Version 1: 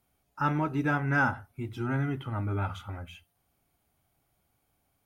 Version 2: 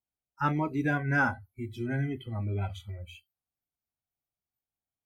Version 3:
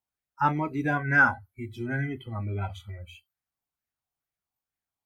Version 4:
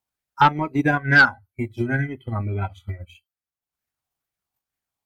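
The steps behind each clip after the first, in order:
spectral noise reduction 24 dB
LFO bell 2.2 Hz 870–1900 Hz +9 dB
transient shaper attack +10 dB, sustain -10 dB; sine folder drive 5 dB, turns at -3 dBFS; gain -4.5 dB

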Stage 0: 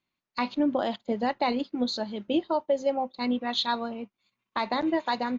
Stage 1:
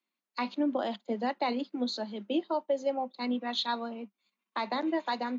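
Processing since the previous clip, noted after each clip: steep high-pass 190 Hz 96 dB/oct; gain -4 dB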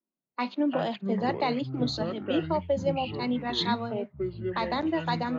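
echoes that change speed 0.158 s, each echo -7 st, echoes 3, each echo -6 dB; low-pass opened by the level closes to 520 Hz, open at -28 dBFS; gain +2.5 dB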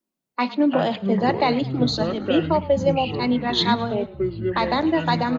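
frequency-shifting echo 0.107 s, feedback 48%, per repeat -35 Hz, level -18 dB; gain +7.5 dB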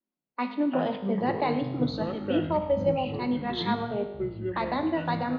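air absorption 240 m; resonator 51 Hz, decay 1.1 s, harmonics all, mix 70%; gain +2 dB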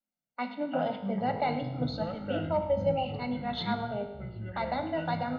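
reverb RT60 0.60 s, pre-delay 3 ms, DRR 17 dB; gain -5.5 dB

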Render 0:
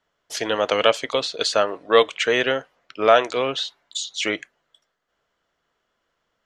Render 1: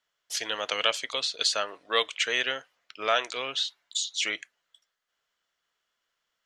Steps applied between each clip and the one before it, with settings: tilt shelf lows -8.5 dB, about 1200 Hz; gain -8.5 dB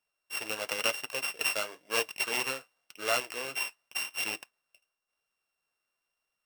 sample sorter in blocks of 16 samples; flange 0.94 Hz, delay 0.5 ms, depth 9.1 ms, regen -46%

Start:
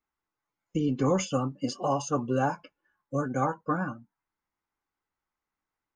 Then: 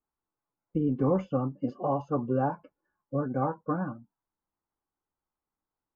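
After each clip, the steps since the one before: LPF 1000 Hz 12 dB/oct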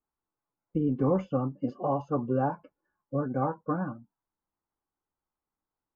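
nothing audible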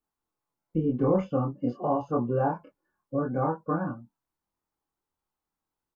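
doubler 25 ms -2 dB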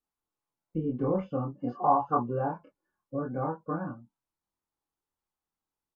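spectral gain 1.6–2.22, 710–1800 Hz +12 dB; treble ducked by the level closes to 2100 Hz, closed at -18 dBFS; gain -4.5 dB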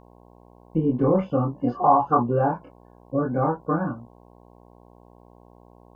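in parallel at -1.5 dB: limiter -21 dBFS, peak gain reduction 10.5 dB; on the sum: buzz 60 Hz, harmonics 18, -55 dBFS -2 dB/oct; gain +3.5 dB

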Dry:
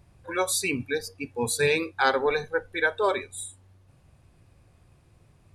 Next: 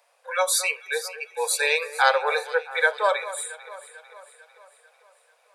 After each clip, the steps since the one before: steep high-pass 470 Hz 96 dB/oct; echo with dull and thin repeats by turns 0.223 s, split 1900 Hz, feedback 71%, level -13.5 dB; gain +4 dB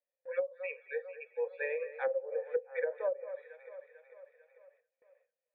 vocal tract filter e; gate with hold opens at -57 dBFS; treble ducked by the level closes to 330 Hz, closed at -25 dBFS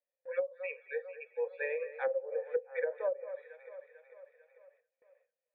nothing audible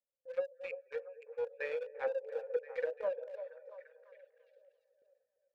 Wiener smoothing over 41 samples; on a send: delay with a stepping band-pass 0.342 s, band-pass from 620 Hz, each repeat 0.7 oct, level -9.5 dB; on the sum: gain -1.5 dB

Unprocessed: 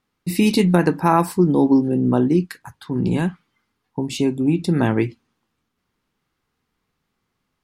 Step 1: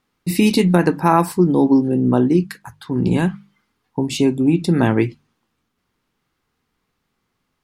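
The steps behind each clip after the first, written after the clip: notches 50/100/150/200 Hz; in parallel at +2 dB: vocal rider within 4 dB 0.5 s; on the sum: gain -4.5 dB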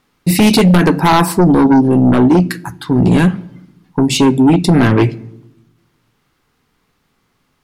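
shoebox room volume 2600 m³, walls furnished, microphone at 0.32 m; in parallel at -9.5 dB: sine folder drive 12 dB, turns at -1 dBFS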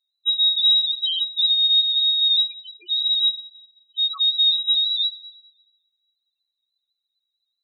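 inverted band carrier 4000 Hz; loudest bins only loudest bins 2; gain -7 dB

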